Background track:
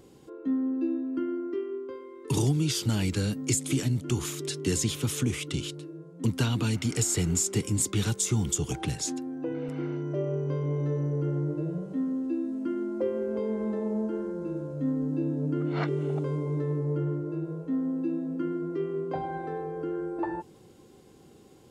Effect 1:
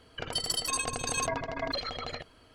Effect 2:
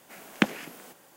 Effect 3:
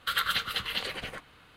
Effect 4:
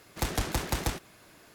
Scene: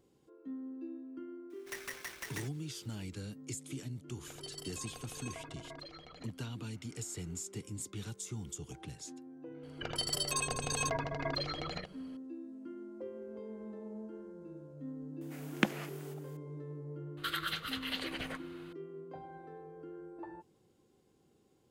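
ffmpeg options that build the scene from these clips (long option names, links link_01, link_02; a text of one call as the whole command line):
ffmpeg -i bed.wav -i cue0.wav -i cue1.wav -i cue2.wav -i cue3.wav -filter_complex "[1:a]asplit=2[link_01][link_02];[0:a]volume=-15.5dB[link_03];[4:a]aeval=exprs='val(0)*sgn(sin(2*PI*1900*n/s))':channel_layout=same[link_04];[link_02]asoftclip=type=hard:threshold=-21dB[link_05];[3:a]alimiter=limit=-23.5dB:level=0:latency=1:release=467[link_06];[link_04]atrim=end=1.54,asetpts=PTS-STARTPTS,volume=-15dB,afade=type=in:duration=0.004:curve=hsin,afade=type=out:start_time=1.536:duration=0.004:curve=hsin,adelay=1500[link_07];[link_01]atrim=end=2.54,asetpts=PTS-STARTPTS,volume=-16.5dB,afade=type=in:duration=0.004:curve=hsin,afade=type=out:start_time=2.536:duration=0.004:curve=hsin,adelay=4080[link_08];[link_05]atrim=end=2.54,asetpts=PTS-STARTPTS,volume=-3.5dB,afade=type=in:duration=0.004:curve=hsin,afade=type=out:start_time=2.536:duration=0.004:curve=hsin,adelay=9630[link_09];[2:a]atrim=end=1.16,asetpts=PTS-STARTPTS,volume=-6.5dB,afade=type=in:duration=0.004:curve=hsin,afade=type=out:start_time=1.156:duration=0.004:curve=hsin,adelay=15210[link_10];[link_06]atrim=end=1.56,asetpts=PTS-STARTPTS,volume=-1dB,afade=type=in:duration=0.004:curve=hsin,afade=type=out:start_time=1.556:duration=0.004:curve=hsin,adelay=17170[link_11];[link_03][link_07][link_08][link_09][link_10][link_11]amix=inputs=6:normalize=0" out.wav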